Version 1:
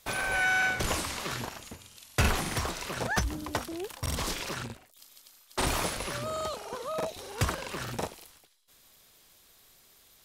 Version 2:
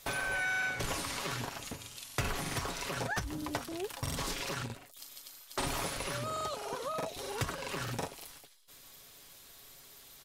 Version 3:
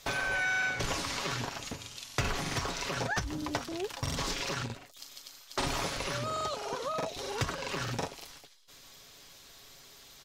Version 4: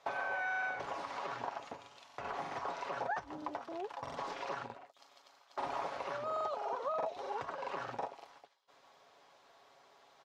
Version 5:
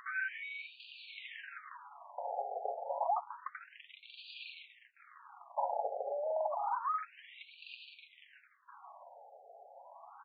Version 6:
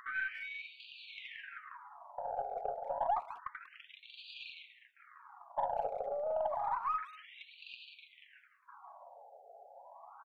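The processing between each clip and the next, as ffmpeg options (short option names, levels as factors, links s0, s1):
-af "aecho=1:1:7.2:0.43,acompressor=threshold=0.00891:ratio=2.5,volume=1.58"
-af "highshelf=f=7800:t=q:w=1.5:g=-7,volume=1.33"
-af "alimiter=limit=0.0631:level=0:latency=1:release=145,bandpass=f=800:t=q:w=1.8:csg=0,volume=1.41"
-filter_complex "[0:a]acrossover=split=490|4900[s0][s1][s2];[s1]acompressor=mode=upward:threshold=0.00355:ratio=2.5[s3];[s0][s3][s2]amix=inputs=3:normalize=0,afftfilt=real='re*between(b*sr/1024,580*pow(3400/580,0.5+0.5*sin(2*PI*0.29*pts/sr))/1.41,580*pow(3400/580,0.5+0.5*sin(2*PI*0.29*pts/sr))*1.41)':imag='im*between(b*sr/1024,580*pow(3400/580,0.5+0.5*sin(2*PI*0.29*pts/sr))/1.41,580*pow(3400/580,0.5+0.5*sin(2*PI*0.29*pts/sr))*1.41)':win_size=1024:overlap=0.75,volume=1.88"
-filter_complex "[0:a]asplit=2[s0][s1];[s1]adelay=190,highpass=300,lowpass=3400,asoftclip=type=hard:threshold=0.0237,volume=0.126[s2];[s0][s2]amix=inputs=2:normalize=0,aeval=exprs='0.075*(cos(1*acos(clip(val(0)/0.075,-1,1)))-cos(1*PI/2))+0.00266*(cos(4*acos(clip(val(0)/0.075,-1,1)))-cos(4*PI/2))':c=same"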